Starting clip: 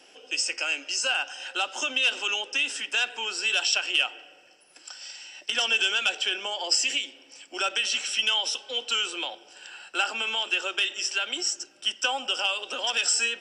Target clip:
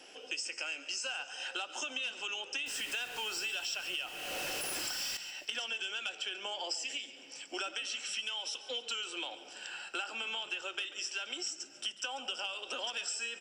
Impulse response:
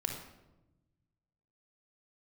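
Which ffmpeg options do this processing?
-filter_complex "[0:a]asettb=1/sr,asplit=3[s0][s1][s2];[s0]atrim=end=2.664[s3];[s1]atrim=start=2.66:end=5.17,asetpts=PTS-STARTPTS,afade=t=in:d=0.004:c=qsin,afade=t=out:st=2.506:d=0.004:c=qsin,aeval=exprs='val(0)+0.5*0.0282*sgn(val(0))':c=same[s4];[s2]atrim=start=5.166[s5];[s3][s4]acrossfade=d=0.004:c1=hsin:c2=qsin[s6];[s6][s5]acrossfade=d=0.004:c1=qsin:c2=hsin,acompressor=threshold=0.0158:ratio=6,asplit=5[s7][s8][s9][s10][s11];[s8]adelay=140,afreqshift=-41,volume=0.158[s12];[s9]adelay=280,afreqshift=-82,volume=0.0794[s13];[s10]adelay=420,afreqshift=-123,volume=0.0398[s14];[s11]adelay=560,afreqshift=-164,volume=0.0197[s15];[s7][s12][s13][s14][s15]amix=inputs=5:normalize=0"

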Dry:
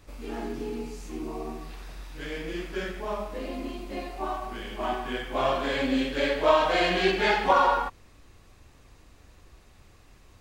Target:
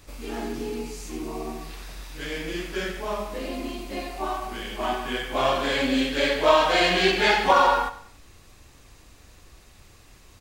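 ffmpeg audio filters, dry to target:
-filter_complex "[0:a]highshelf=f=3000:g=7.5,asplit=2[s0][s1];[s1]aecho=0:1:95|190|285:0.178|0.0658|0.0243[s2];[s0][s2]amix=inputs=2:normalize=0,volume=1.26"

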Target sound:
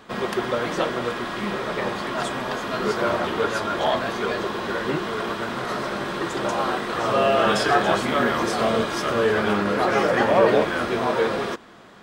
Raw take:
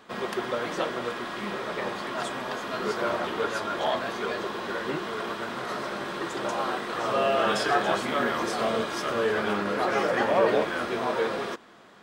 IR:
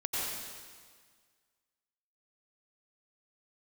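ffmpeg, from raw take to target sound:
-af "lowshelf=f=130:g=9.5,volume=1.68"

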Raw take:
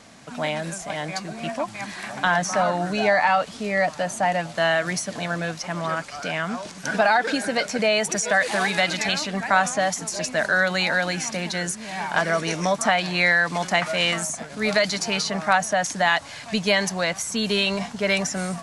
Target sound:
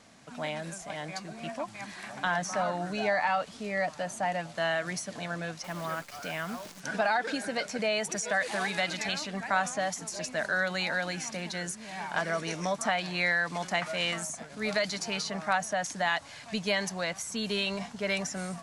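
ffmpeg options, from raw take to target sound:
-filter_complex "[0:a]asettb=1/sr,asplit=3[s0][s1][s2];[s0]atrim=end=5.644[s3];[s1]atrim=start=5.64:end=6.8,asetpts=PTS-STARTPTS,afade=t=in:d=0.004:c=qsin,afade=t=out:st=1.156:d=0.004:c=qsin,acrusher=bits=7:dc=4:mix=0:aa=0.000001[s4];[s2]atrim=start=6.796[s5];[s3][s4]acrossfade=d=0.004:c1=hsin:c2=qsin[s6];[s6][s5]acrossfade=d=0.004:c1=qsin:c2=hsin,volume=0.376"

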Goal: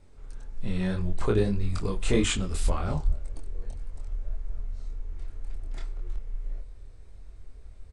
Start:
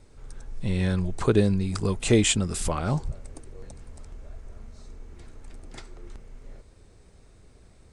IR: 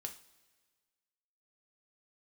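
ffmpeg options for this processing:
-filter_complex "[0:a]flanger=delay=22.5:depth=4.6:speed=1.8,asplit=2[s0][s1];[s1]asetrate=22050,aresample=44100,atempo=2,volume=0.282[s2];[s0][s2]amix=inputs=2:normalize=0,asubboost=boost=6:cutoff=64,asplit=2[s3][s4];[1:a]atrim=start_sample=2205,lowpass=4800[s5];[s4][s5]afir=irnorm=-1:irlink=0,volume=0.631[s6];[s3][s6]amix=inputs=2:normalize=0,volume=0.668"

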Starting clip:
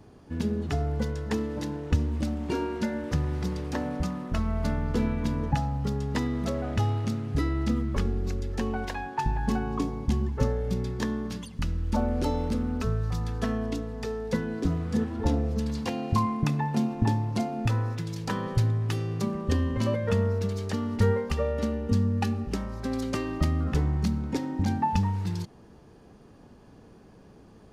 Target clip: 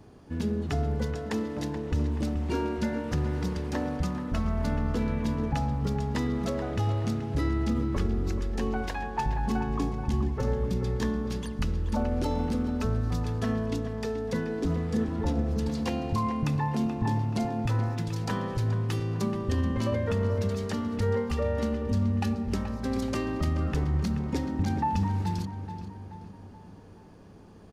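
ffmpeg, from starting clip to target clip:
-filter_complex "[0:a]alimiter=limit=0.106:level=0:latency=1:release=18,asplit=2[s0][s1];[s1]adelay=429,lowpass=f=3200:p=1,volume=0.335,asplit=2[s2][s3];[s3]adelay=429,lowpass=f=3200:p=1,volume=0.52,asplit=2[s4][s5];[s5]adelay=429,lowpass=f=3200:p=1,volume=0.52,asplit=2[s6][s7];[s7]adelay=429,lowpass=f=3200:p=1,volume=0.52,asplit=2[s8][s9];[s9]adelay=429,lowpass=f=3200:p=1,volume=0.52,asplit=2[s10][s11];[s11]adelay=429,lowpass=f=3200:p=1,volume=0.52[s12];[s2][s4][s6][s8][s10][s12]amix=inputs=6:normalize=0[s13];[s0][s13]amix=inputs=2:normalize=0"

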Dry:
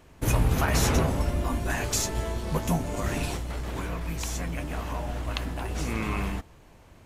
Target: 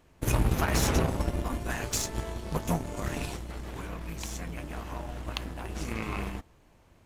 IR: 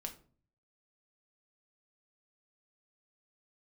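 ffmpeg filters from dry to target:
-af "tremolo=f=270:d=0.462,aeval=exprs='0.224*(cos(1*acos(clip(val(0)/0.224,-1,1)))-cos(1*PI/2))+0.0141*(cos(7*acos(clip(val(0)/0.224,-1,1)))-cos(7*PI/2))':c=same"

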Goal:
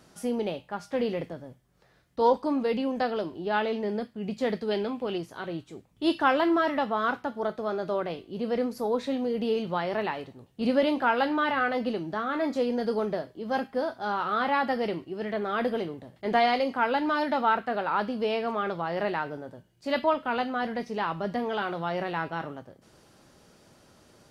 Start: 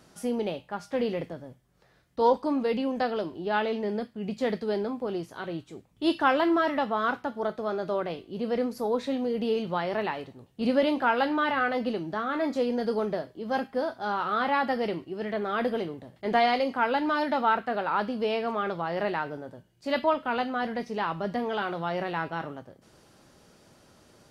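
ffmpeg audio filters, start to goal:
-filter_complex "[0:a]asettb=1/sr,asplit=3[s0][s1][s2];[s0]atrim=end=4.714[s3];[s1]atrim=start=4.71:end=5.18,asetpts=PTS-STARTPTS,afade=t=in:d=0.004:c=qsin,afade=t=out:st=0.466:d=0.004:c=qsin,equalizer=f=2800:w=1.6:g=11[s4];[s2]atrim=start=5.176[s5];[s3][s4]acrossfade=d=0.004:c1=hsin:c2=qsin[s6];[s6][s5]acrossfade=d=0.004:c1=qsin:c2=hsin"

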